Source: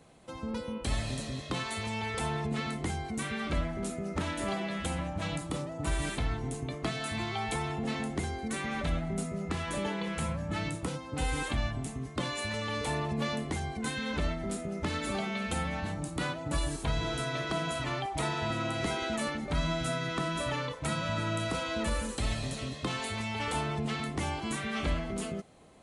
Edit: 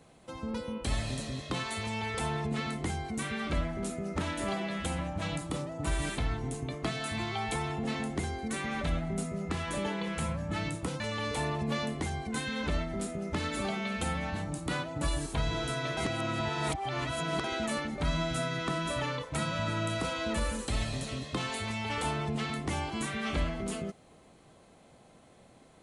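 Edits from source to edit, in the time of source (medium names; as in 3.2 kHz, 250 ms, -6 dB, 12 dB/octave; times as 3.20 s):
11.00–12.50 s: delete
17.47–18.94 s: reverse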